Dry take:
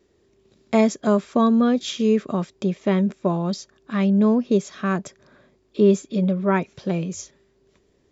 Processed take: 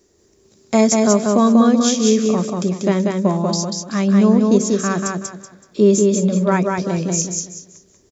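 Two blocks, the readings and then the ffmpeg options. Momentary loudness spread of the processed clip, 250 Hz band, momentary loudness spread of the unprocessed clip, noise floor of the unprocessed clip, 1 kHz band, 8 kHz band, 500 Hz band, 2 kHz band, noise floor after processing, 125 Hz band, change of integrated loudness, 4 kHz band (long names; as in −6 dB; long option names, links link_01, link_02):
10 LU, +5.0 dB, 10 LU, −64 dBFS, +5.0 dB, can't be measured, +5.0 dB, +4.0 dB, −56 dBFS, +5.0 dB, +5.0 dB, +8.0 dB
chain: -filter_complex "[0:a]highshelf=frequency=4500:width_type=q:width=1.5:gain=9.5,bandreject=frequency=63.67:width_type=h:width=4,bandreject=frequency=127.34:width_type=h:width=4,bandreject=frequency=191.01:width_type=h:width=4,bandreject=frequency=254.68:width_type=h:width=4,bandreject=frequency=318.35:width_type=h:width=4,bandreject=frequency=382.02:width_type=h:width=4,bandreject=frequency=445.69:width_type=h:width=4,bandreject=frequency=509.36:width_type=h:width=4,bandreject=frequency=573.03:width_type=h:width=4,asplit=2[link_01][link_02];[link_02]aecho=0:1:189|378|567|756:0.708|0.205|0.0595|0.0173[link_03];[link_01][link_03]amix=inputs=2:normalize=0,volume=3.5dB"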